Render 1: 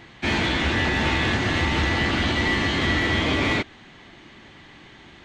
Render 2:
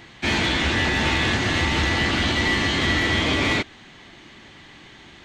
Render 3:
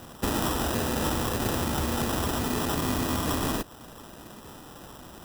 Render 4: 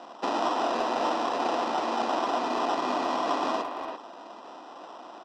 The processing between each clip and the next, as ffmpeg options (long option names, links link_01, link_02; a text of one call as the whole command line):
ffmpeg -i in.wav -af "highshelf=frequency=3900:gain=7" out.wav
ffmpeg -i in.wav -af "acompressor=threshold=-25dB:ratio=6,acrusher=samples=20:mix=1:aa=0.000001,crystalizer=i=1:c=0" out.wav
ffmpeg -i in.wav -filter_complex "[0:a]highpass=frequency=290:width=0.5412,highpass=frequency=290:width=1.3066,equalizer=frequency=430:width_type=q:width=4:gain=-4,equalizer=frequency=700:width_type=q:width=4:gain=9,equalizer=frequency=1000:width_type=q:width=4:gain=6,equalizer=frequency=1700:width_type=q:width=4:gain=-5,equalizer=frequency=3400:width_type=q:width=4:gain=-4,lowpass=frequency=5000:width=0.5412,lowpass=frequency=5000:width=1.3066,asplit=2[link_01][link_02];[link_02]adelay=340,highpass=300,lowpass=3400,asoftclip=type=hard:threshold=-22dB,volume=-6dB[link_03];[link_01][link_03]amix=inputs=2:normalize=0" out.wav